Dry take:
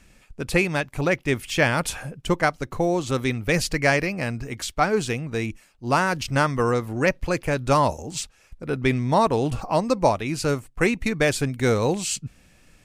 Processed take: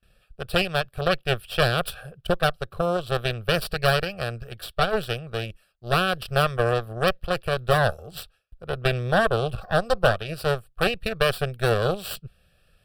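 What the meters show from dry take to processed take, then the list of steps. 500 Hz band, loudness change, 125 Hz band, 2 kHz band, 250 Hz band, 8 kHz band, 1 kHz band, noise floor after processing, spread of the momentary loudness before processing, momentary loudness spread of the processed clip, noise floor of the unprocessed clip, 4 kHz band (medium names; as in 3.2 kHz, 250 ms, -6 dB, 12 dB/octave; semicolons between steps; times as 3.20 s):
-0.5 dB, -1.5 dB, -1.0 dB, -1.0 dB, -7.0 dB, -10.0 dB, -2.0 dB, -65 dBFS, 10 LU, 12 LU, -57 dBFS, +3.5 dB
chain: Chebyshev shaper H 4 -6 dB, 7 -29 dB, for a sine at -6.5 dBFS; static phaser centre 1.4 kHz, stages 8; gate with hold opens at -51 dBFS; trim -1.5 dB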